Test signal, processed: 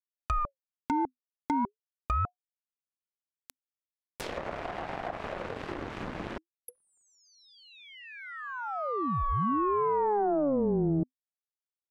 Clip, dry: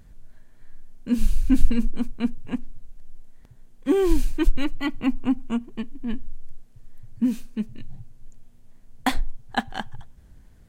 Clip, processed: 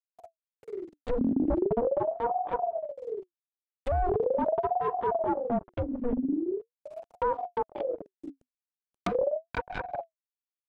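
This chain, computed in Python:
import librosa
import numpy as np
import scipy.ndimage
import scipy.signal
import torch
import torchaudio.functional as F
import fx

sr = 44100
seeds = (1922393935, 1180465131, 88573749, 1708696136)

y = fx.fuzz(x, sr, gain_db=29.0, gate_db=-34.0)
y = fx.env_lowpass_down(y, sr, base_hz=700.0, full_db=-16.5)
y = fx.ring_lfo(y, sr, carrier_hz=490.0, swing_pct=50, hz=0.41)
y = F.gain(torch.from_numpy(y), -7.5).numpy()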